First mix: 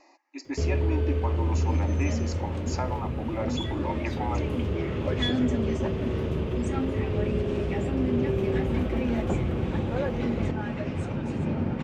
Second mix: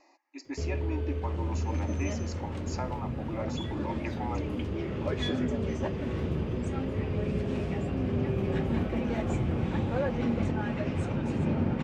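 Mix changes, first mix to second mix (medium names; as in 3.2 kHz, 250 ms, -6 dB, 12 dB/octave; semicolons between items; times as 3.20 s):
speech -4.5 dB; first sound -6.5 dB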